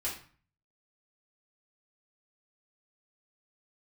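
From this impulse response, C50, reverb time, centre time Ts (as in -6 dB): 6.5 dB, 0.40 s, 29 ms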